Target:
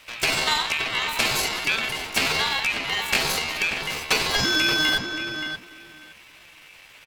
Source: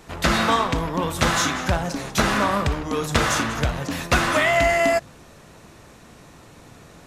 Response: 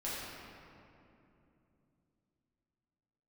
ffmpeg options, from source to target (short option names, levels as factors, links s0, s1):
-filter_complex "[0:a]aeval=exprs='val(0)*sin(2*PI*1800*n/s)':c=same,asplit=2[s0][s1];[s1]adelay=578,lowpass=f=1900:p=1,volume=0.501,asplit=2[s2][s3];[s3]adelay=578,lowpass=f=1900:p=1,volume=0.17,asplit=2[s4][s5];[s5]adelay=578,lowpass=f=1900:p=1,volume=0.17[s6];[s0][s2][s4][s6]amix=inputs=4:normalize=0,asetrate=60591,aresample=44100,atempo=0.727827"